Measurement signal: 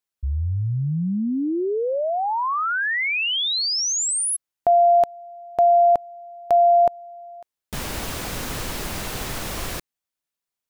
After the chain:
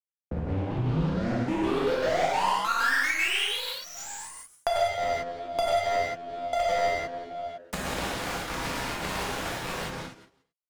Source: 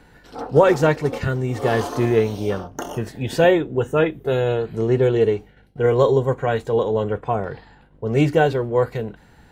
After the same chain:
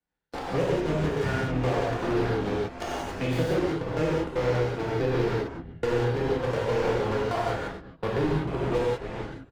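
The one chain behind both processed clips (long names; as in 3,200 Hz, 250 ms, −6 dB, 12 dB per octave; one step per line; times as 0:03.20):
noise gate −41 dBFS, range −25 dB
treble cut that deepens with the level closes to 410 Hz, closed at −13.5 dBFS
low-shelf EQ 450 Hz −2.5 dB
on a send: echo with shifted repeats 89 ms, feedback 53%, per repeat −87 Hz, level −11.5 dB
on the sum: brickwall limiter −15 dBFS
soft clipping −27.5 dBFS
harmonic generator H 2 −21 dB, 3 −13 dB, 4 −20 dB, 5 −10 dB, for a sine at −27.5 dBFS
gate pattern "xx..x.xx.x.xxx." 193 BPM −60 dB
power curve on the samples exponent 2
reverb whose tail is shaped and stops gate 210 ms flat, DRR −8 dB
multiband upward and downward compressor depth 70%
level +1 dB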